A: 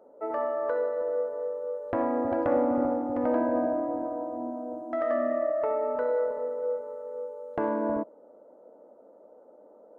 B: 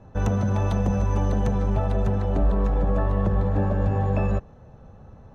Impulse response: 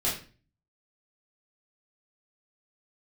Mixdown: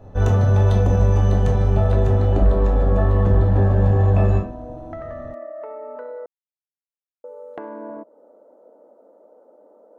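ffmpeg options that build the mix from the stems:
-filter_complex "[0:a]highpass=190,acompressor=threshold=0.02:ratio=6,volume=1.33,asplit=3[s0][s1][s2];[s0]atrim=end=6.26,asetpts=PTS-STARTPTS,afade=t=out:st=6.256:d=0.004:c=hsin[s3];[s1]atrim=start=6.26:end=7.24,asetpts=PTS-STARTPTS,volume=0[s4];[s2]atrim=start=7.24,asetpts=PTS-STARTPTS,afade=t=in:d=0.004:c=hsin[s5];[s3][s4][s5]concat=n=3:v=0:a=1[s6];[1:a]volume=0.75,asplit=2[s7][s8];[s8]volume=0.531[s9];[2:a]atrim=start_sample=2205[s10];[s9][s10]afir=irnorm=-1:irlink=0[s11];[s6][s7][s11]amix=inputs=3:normalize=0"

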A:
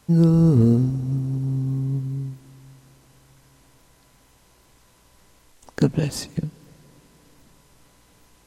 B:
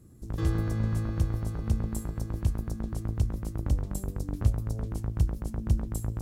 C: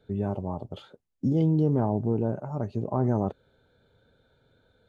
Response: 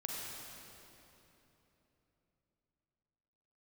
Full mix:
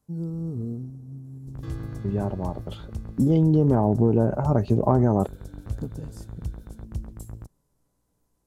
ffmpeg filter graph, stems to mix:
-filter_complex "[0:a]equalizer=f=2700:t=o:w=2.2:g=-15,volume=0.178[s0];[1:a]adelay=1250,volume=0.447[s1];[2:a]dynaudnorm=f=220:g=17:m=3.98,adelay=1950,volume=1.26[s2];[s0][s1][s2]amix=inputs=3:normalize=0,acompressor=threshold=0.2:ratio=6"

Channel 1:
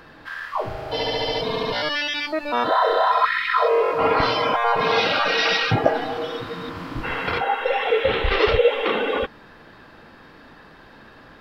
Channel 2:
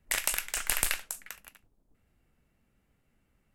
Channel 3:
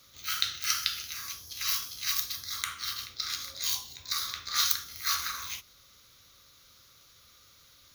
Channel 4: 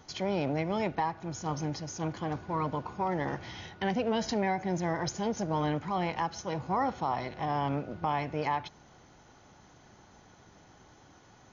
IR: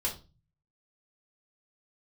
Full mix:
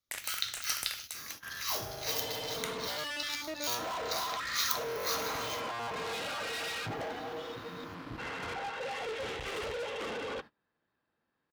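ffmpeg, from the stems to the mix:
-filter_complex "[0:a]aeval=exprs='(tanh(22.4*val(0)+0.6)-tanh(0.6))/22.4':c=same,adelay=1150,volume=0.398[s0];[1:a]acompressor=threshold=0.00708:ratio=2,volume=0.944[s1];[2:a]volume=0.531[s2];[s0][s1][s2]amix=inputs=3:normalize=0,agate=range=0.0562:threshold=0.00562:ratio=16:detection=peak,highpass=60"

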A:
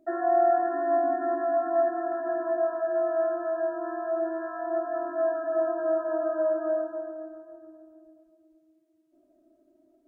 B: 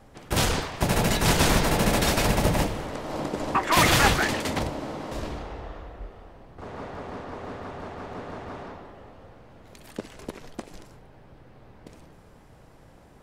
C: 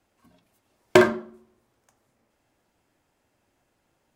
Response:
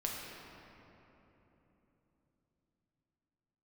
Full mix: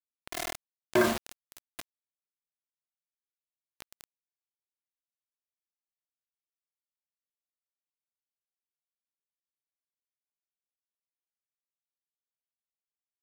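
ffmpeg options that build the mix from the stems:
-filter_complex "[0:a]bandreject=f=1000:w=20,volume=0.2[s0];[1:a]highpass=f=1200:w=0.5412,highpass=f=1200:w=1.3066,volume=0.106[s1];[2:a]volume=0.75[s2];[s0][s1][s2]amix=inputs=3:normalize=0,acrusher=bits=4:mix=0:aa=0.000001,alimiter=limit=0.188:level=0:latency=1:release=19"

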